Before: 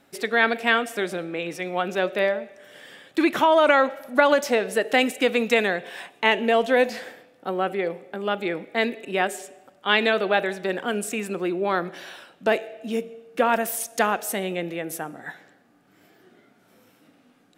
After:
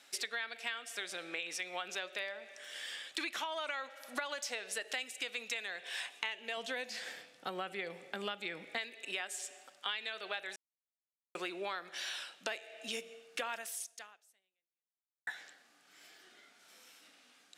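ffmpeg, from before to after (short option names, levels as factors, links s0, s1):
-filter_complex "[0:a]asettb=1/sr,asplit=3[s0][s1][s2];[s0]atrim=end=6.574[s3];[s1]atrim=start=6.57:end=8.78,asetpts=PTS-STARTPTS,afade=t=in:d=0.004:c=qsin,afade=t=out:st=2.206:d=0.004:c=qsin,equalizer=f=140:t=o:w=1.5:g=14.5[s4];[s2]atrim=start=8.776[s5];[s3][s4]acrossfade=d=0.004:c1=hsin:c2=qsin[s6];[s6][s5]acrossfade=d=0.004:c1=qsin:c2=hsin,asplit=4[s7][s8][s9][s10];[s7]atrim=end=10.56,asetpts=PTS-STARTPTS,afade=t=out:st=10.556:d=0.004:c=hsin[s11];[s8]atrim=start=10.56:end=11.35,asetpts=PTS-STARTPTS,volume=0[s12];[s9]atrim=start=11.35:end=15.27,asetpts=PTS-STARTPTS,afade=t=in:d=0.004:c=hsin,afade=t=out:st=2.23:d=1.69:c=exp[s13];[s10]atrim=start=15.27,asetpts=PTS-STARTPTS,afade=t=in:d=0.004:c=hsin[s14];[s11][s12][s13][s14]concat=n=4:v=0:a=1,lowpass=6100,aderivative,acompressor=threshold=0.00398:ratio=10,volume=3.98"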